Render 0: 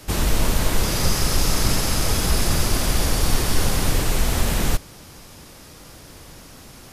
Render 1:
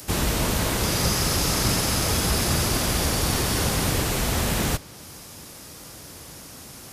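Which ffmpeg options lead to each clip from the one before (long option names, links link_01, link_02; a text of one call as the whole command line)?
ffmpeg -i in.wav -filter_complex "[0:a]highpass=63,acrossover=split=5500[link_01][link_02];[link_02]acompressor=mode=upward:threshold=-38dB:ratio=2.5[link_03];[link_01][link_03]amix=inputs=2:normalize=0" out.wav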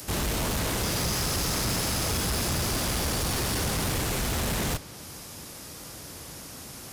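ffmpeg -i in.wav -af "asoftclip=type=tanh:threshold=-24dB" out.wav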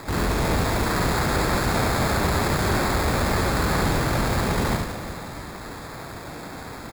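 ffmpeg -i in.wav -af "acrusher=samples=15:mix=1:aa=0.000001,aecho=1:1:70|182|361.2|647.9|1107:0.631|0.398|0.251|0.158|0.1,volume=3.5dB" out.wav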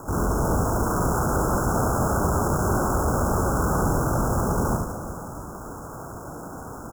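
ffmpeg -i in.wav -af "asuperstop=centerf=2900:order=20:qfactor=0.73" out.wav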